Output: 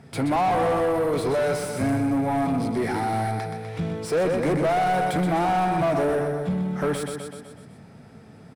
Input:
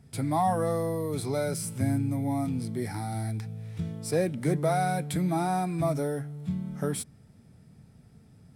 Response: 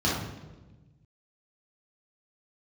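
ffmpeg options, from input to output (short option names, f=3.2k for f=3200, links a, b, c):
-filter_complex "[0:a]aecho=1:1:125|250|375|500|625|750:0.422|0.223|0.118|0.0628|0.0333|0.0176,asplit=2[a][b];[b]highpass=f=720:p=1,volume=27dB,asoftclip=type=tanh:threshold=-12.5dB[c];[a][c]amix=inputs=2:normalize=0,lowpass=f=1.3k:p=1,volume=-6dB,volume=-1.5dB"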